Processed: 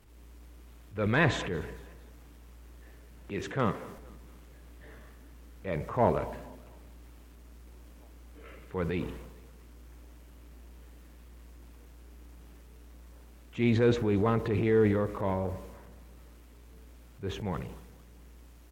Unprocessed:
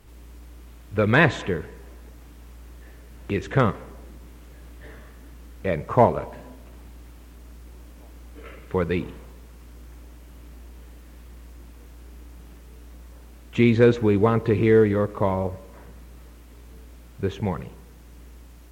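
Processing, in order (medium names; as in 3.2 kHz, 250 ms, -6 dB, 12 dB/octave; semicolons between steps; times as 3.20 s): 3.30–3.98 s: high-pass 110 Hz 12 dB/octave; transient shaper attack -6 dB, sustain +6 dB; feedback delay 227 ms, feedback 47%, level -23 dB; trim -7 dB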